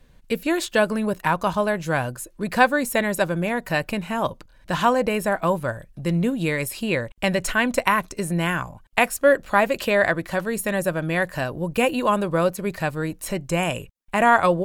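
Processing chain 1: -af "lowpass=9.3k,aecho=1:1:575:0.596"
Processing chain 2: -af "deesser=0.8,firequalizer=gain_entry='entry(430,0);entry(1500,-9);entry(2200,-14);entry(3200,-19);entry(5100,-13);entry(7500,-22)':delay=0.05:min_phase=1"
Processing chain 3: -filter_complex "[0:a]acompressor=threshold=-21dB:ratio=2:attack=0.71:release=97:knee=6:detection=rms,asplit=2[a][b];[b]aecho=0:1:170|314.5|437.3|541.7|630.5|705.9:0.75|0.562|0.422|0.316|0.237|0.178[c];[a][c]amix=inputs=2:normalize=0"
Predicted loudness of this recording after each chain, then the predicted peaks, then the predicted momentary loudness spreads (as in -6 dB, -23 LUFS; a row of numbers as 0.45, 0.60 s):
-21.5, -26.0, -23.5 LUFS; -2.0, -9.0, -9.0 dBFS; 7, 8, 4 LU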